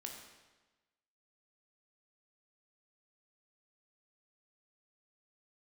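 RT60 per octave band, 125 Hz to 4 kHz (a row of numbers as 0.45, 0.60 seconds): 1.2, 1.2, 1.2, 1.2, 1.1, 1.1 seconds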